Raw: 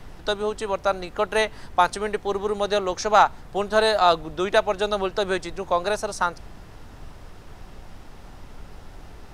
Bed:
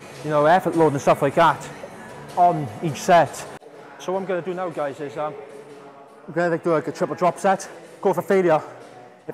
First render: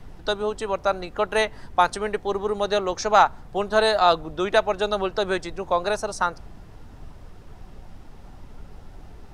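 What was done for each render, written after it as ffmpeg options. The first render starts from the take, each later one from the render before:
-af "afftdn=nr=6:nf=-44"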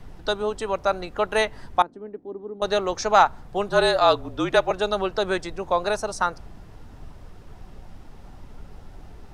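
-filter_complex "[0:a]asettb=1/sr,asplit=3[a][b][c];[a]atrim=end=1.824[d];[b]atrim=start=1.82:end=2.62,asetpts=PTS-STARTPTS,afade=t=in:d=0.004:c=qsin,afade=t=out:st=0.796:d=0.004:c=qsin,bandpass=f=280:t=q:w=3.4[e];[c]atrim=start=2.616[f];[d][e]acrossfade=d=0.004:c1=hsin:c2=qsin[g];[g][f]acrossfade=d=0.004:c1=qsin:c2=hsin,asettb=1/sr,asplit=3[h][i][j];[h]atrim=end=3.684[k];[i]atrim=start=3.68:end=4.71,asetpts=PTS-STARTPTS,afade=t=in:d=0.004:c=qsin,afade=t=out:st=1.026:d=0.004:c=qsin,afreqshift=-43[l];[j]atrim=start=4.706[m];[k][l]acrossfade=d=0.004:c1=hsin:c2=qsin[n];[n][m]acrossfade=d=0.004:c1=qsin:c2=hsin"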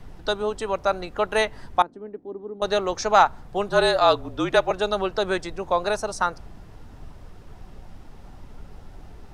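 -af anull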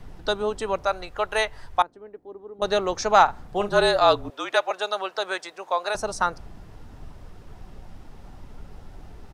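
-filter_complex "[0:a]asettb=1/sr,asplit=3[a][b][c];[a]atrim=end=0.854[d];[b]atrim=start=0.85:end=2.59,asetpts=PTS-STARTPTS,afade=t=in:d=0.004:c=qsin,afade=t=out:st=1.736:d=0.004:c=qsin,equalizer=f=230:t=o:w=1.5:g=-12[e];[c]atrim=start=2.586[f];[d][e]acrossfade=d=0.004:c1=hsin:c2=qsin[g];[g][f]acrossfade=d=0.004:c1=qsin:c2=hsin,asplit=3[h][i][j];[h]afade=t=out:st=3.27:d=0.02[k];[i]asplit=2[l][m];[m]adelay=39,volume=-9dB[n];[l][n]amix=inputs=2:normalize=0,afade=t=in:st=3.27:d=0.02,afade=t=out:st=3.79:d=0.02[o];[j]afade=t=in:st=3.79:d=0.02[p];[k][o][p]amix=inputs=3:normalize=0,asettb=1/sr,asplit=3[q][r][s];[q]atrim=end=4.304[t];[r]atrim=start=4.3:end=5.95,asetpts=PTS-STARTPTS,afade=t=in:d=0.004:c=qsin,afade=t=out:st=1.646:d=0.004:c=qsin,highpass=650[u];[s]atrim=start=5.946[v];[t][u]acrossfade=d=0.004:c1=hsin:c2=qsin[w];[w][v]acrossfade=d=0.004:c1=qsin:c2=hsin"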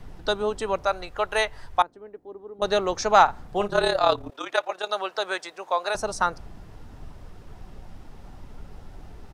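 -filter_complex "[0:a]asettb=1/sr,asplit=3[a][b][c];[a]atrim=end=3.674[d];[b]atrim=start=3.67:end=4.91,asetpts=PTS-STARTPTS,afade=t=in:d=0.004:c=qsin,afade=t=out:st=1.236:d=0.004:c=qsin,tremolo=f=35:d=0.667[e];[c]atrim=start=4.906[f];[d][e]acrossfade=d=0.004:c1=hsin:c2=qsin[g];[g][f]acrossfade=d=0.004:c1=qsin:c2=hsin"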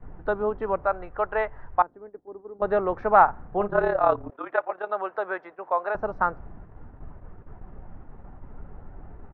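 -af "agate=range=-9dB:threshold=-42dB:ratio=16:detection=peak,lowpass=f=1.7k:w=0.5412,lowpass=f=1.7k:w=1.3066"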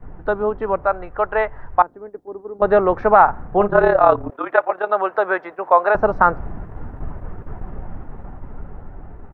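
-af "dynaudnorm=f=530:g=7:m=11.5dB,alimiter=level_in=5.5dB:limit=-1dB:release=50:level=0:latency=1"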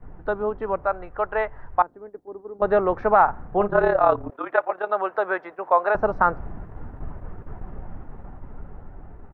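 -af "volume=-5dB"

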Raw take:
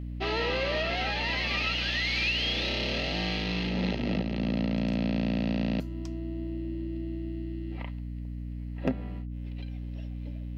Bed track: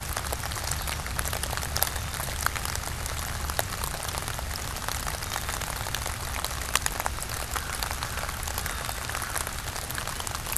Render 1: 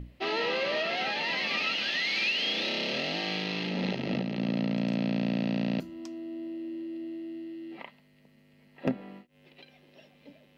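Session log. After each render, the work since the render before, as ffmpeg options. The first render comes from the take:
-af "bandreject=f=60:t=h:w=6,bandreject=f=120:t=h:w=6,bandreject=f=180:t=h:w=6,bandreject=f=240:t=h:w=6,bandreject=f=300:t=h:w=6,bandreject=f=360:t=h:w=6"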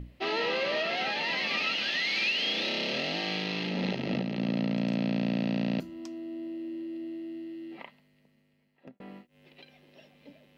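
-filter_complex "[0:a]asplit=2[a][b];[a]atrim=end=9,asetpts=PTS-STARTPTS,afade=t=out:st=7.64:d=1.36[c];[b]atrim=start=9,asetpts=PTS-STARTPTS,afade=t=in:d=0.004:c=hsin[d];[c][d]concat=n=2:v=0:a=1"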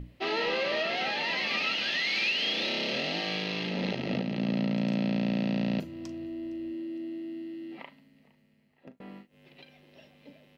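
-filter_complex "[0:a]asplit=2[a][b];[b]adelay=40,volume=-14dB[c];[a][c]amix=inputs=2:normalize=0,asplit=3[d][e][f];[e]adelay=461,afreqshift=-58,volume=-23dB[g];[f]adelay=922,afreqshift=-116,volume=-31.6dB[h];[d][g][h]amix=inputs=3:normalize=0"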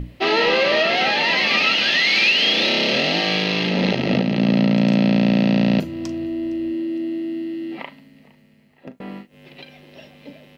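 -af "volume=12dB"

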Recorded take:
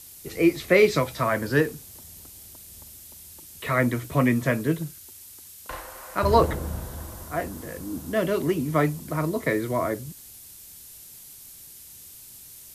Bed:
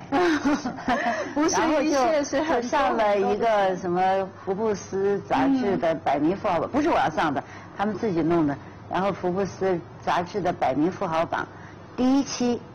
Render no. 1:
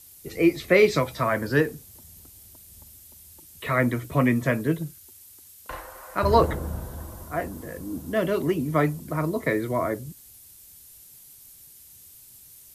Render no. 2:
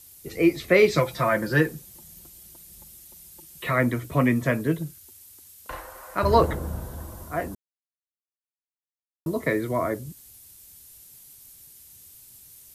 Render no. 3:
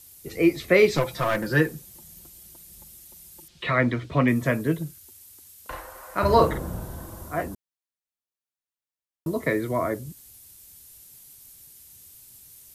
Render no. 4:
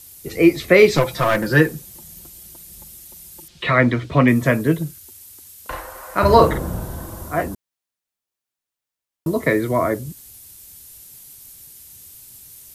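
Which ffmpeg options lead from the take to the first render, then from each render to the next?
-af "afftdn=nr=6:nf=-46"
-filter_complex "[0:a]asettb=1/sr,asplit=3[a][b][c];[a]atrim=end=0.974[d];[b]atrim=start=0.97:end=3.71,asetpts=PTS-STARTPTS,afade=t=in:d=0.004:c=qsin,afade=t=out:st=2.736:d=0.004:c=qsin,aecho=1:1:5.7:0.65,atrim=end_sample=120834[e];[c]atrim=start=3.706[f];[d][e]acrossfade=d=0.004:c1=hsin:c2=qsin[g];[g][f]acrossfade=d=0.004:c1=qsin:c2=hsin,asplit=3[h][i][j];[h]atrim=end=7.55,asetpts=PTS-STARTPTS,afade=t=out:st=7.546:d=0.004:c=hsin[k];[i]atrim=start=7.55:end=9.26,asetpts=PTS-STARTPTS,volume=0[l];[j]atrim=start=9.26,asetpts=PTS-STARTPTS,afade=t=in:d=0.004:c=hsin[m];[k][l][m]concat=n=3:v=0:a=1"
-filter_complex "[0:a]asettb=1/sr,asplit=3[a][b][c];[a]atrim=end=0.944[d];[b]atrim=start=0.94:end=1.46,asetpts=PTS-STARTPTS,afade=t=in:d=0.004:c=qsin,afade=t=out:st=0.516:d=0.004:c=qsin,aeval=exprs='clip(val(0),-1,0.0501)':c=same[e];[c]atrim=start=1.456[f];[d][e]acrossfade=d=0.004:c1=hsin:c2=qsin[g];[g][f]acrossfade=d=0.004:c1=qsin:c2=hsin,asettb=1/sr,asplit=3[h][i][j];[h]atrim=end=3.484[k];[i]atrim=start=3.48:end=4.28,asetpts=PTS-STARTPTS,afade=t=in:d=0.004:c=qsin,afade=t=out:st=0.796:d=0.004:c=qsin,lowpass=f=4k:t=q:w=1.6[l];[j]atrim=start=4.276[m];[k][l]acrossfade=d=0.004:c1=hsin:c2=qsin[n];[n][m]acrossfade=d=0.004:c1=qsin:c2=hsin,asettb=1/sr,asplit=3[o][p][q];[o]atrim=end=6.114[r];[p]atrim=start=6.11:end=7.42,asetpts=PTS-STARTPTS,afade=t=in:d=0.004:c=qsin,afade=t=out:st=1.306:d=0.004:c=qsin,asplit=2[s][t];[t]adelay=46,volume=-6.5dB[u];[s][u]amix=inputs=2:normalize=0,atrim=end_sample=57771[v];[q]atrim=start=7.416[w];[r][v]acrossfade=d=0.004:c1=hsin:c2=qsin[x];[x][w]acrossfade=d=0.004:c1=qsin:c2=hsin"
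-af "volume=6.5dB,alimiter=limit=-1dB:level=0:latency=1"

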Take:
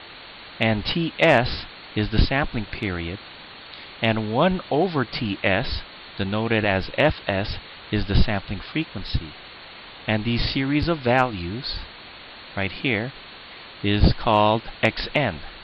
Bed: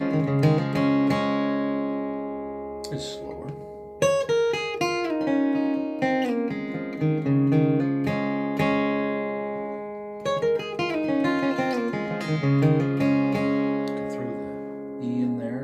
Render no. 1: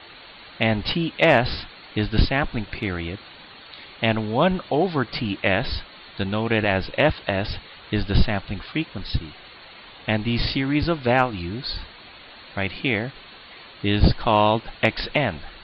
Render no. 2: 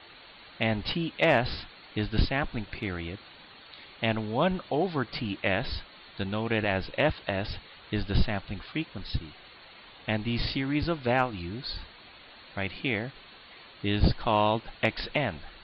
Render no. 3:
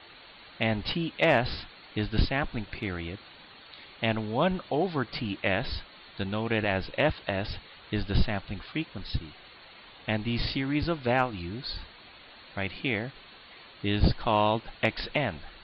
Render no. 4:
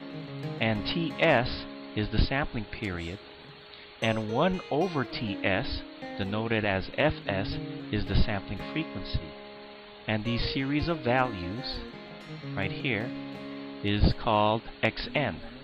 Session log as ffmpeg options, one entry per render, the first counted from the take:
-af "afftdn=nr=6:nf=-42"
-af "volume=-6.5dB"
-af anull
-filter_complex "[1:a]volume=-16.5dB[a];[0:a][a]amix=inputs=2:normalize=0"

